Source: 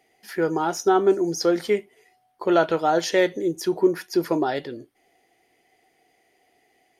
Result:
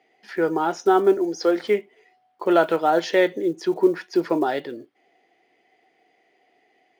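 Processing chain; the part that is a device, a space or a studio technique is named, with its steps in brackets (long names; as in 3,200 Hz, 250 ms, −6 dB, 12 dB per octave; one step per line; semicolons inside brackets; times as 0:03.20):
early digital voice recorder (band-pass filter 200–3,800 Hz; one scale factor per block 7 bits)
0:01.17–0:01.64: high-pass filter 250 Hz
level +1.5 dB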